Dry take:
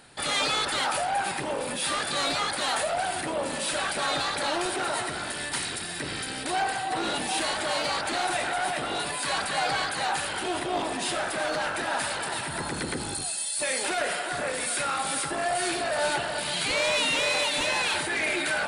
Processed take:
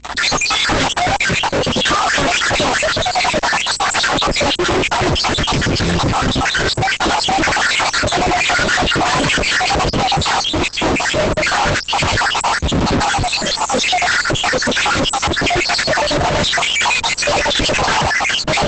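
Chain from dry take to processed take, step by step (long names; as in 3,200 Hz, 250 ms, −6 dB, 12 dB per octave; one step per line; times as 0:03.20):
time-frequency cells dropped at random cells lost 71%
0:02.74–0:03.18: high-pass filter 46 Hz 6 dB per octave
RIAA equalisation playback
in parallel at −1 dB: compressor whose output falls as the input rises −37 dBFS, ratio −0.5
on the sum: fuzz pedal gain 52 dB, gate −51 dBFS
mains hum 60 Hz, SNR 29 dB
downsampling to 22,050 Hz
Opus 12 kbit/s 48,000 Hz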